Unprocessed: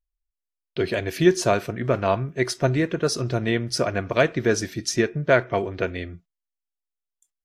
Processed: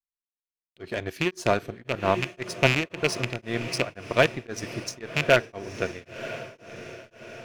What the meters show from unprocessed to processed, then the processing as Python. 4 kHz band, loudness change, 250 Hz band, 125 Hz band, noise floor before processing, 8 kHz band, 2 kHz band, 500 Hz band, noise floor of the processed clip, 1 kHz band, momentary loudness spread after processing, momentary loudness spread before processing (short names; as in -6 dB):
0.0 dB, -3.5 dB, -7.5 dB, -5.5 dB, under -85 dBFS, -6.5 dB, 0.0 dB, -4.5 dB, under -85 dBFS, -2.0 dB, 19 LU, 8 LU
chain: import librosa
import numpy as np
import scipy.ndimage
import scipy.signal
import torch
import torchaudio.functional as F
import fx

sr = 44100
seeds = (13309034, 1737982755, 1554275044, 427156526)

y = fx.rattle_buzz(x, sr, strikes_db=-23.0, level_db=-9.0)
y = fx.power_curve(y, sr, exponent=1.4)
y = fx.echo_diffused(y, sr, ms=977, feedback_pct=54, wet_db=-13.5)
y = y * np.abs(np.cos(np.pi * 1.9 * np.arange(len(y)) / sr))
y = y * 10.0 ** (3.0 / 20.0)